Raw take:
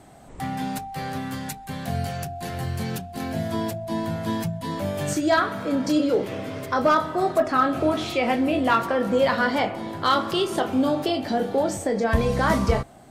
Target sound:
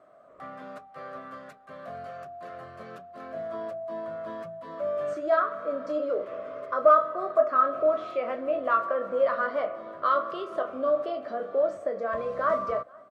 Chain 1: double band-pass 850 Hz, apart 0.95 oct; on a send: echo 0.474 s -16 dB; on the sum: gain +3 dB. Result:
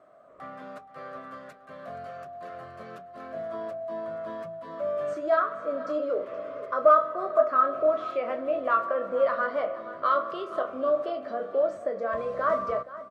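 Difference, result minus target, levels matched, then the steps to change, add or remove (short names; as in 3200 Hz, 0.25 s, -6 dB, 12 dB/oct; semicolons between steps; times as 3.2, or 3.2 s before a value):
echo-to-direct +11 dB
change: echo 0.474 s -27 dB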